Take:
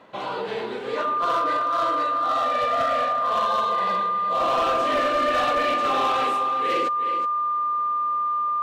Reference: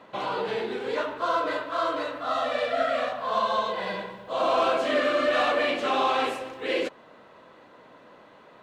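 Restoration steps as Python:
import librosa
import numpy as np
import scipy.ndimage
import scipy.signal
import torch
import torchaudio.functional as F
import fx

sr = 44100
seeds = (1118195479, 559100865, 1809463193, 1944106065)

y = fx.fix_declip(x, sr, threshold_db=-17.0)
y = fx.notch(y, sr, hz=1200.0, q=30.0)
y = fx.fix_echo_inverse(y, sr, delay_ms=370, level_db=-10.0)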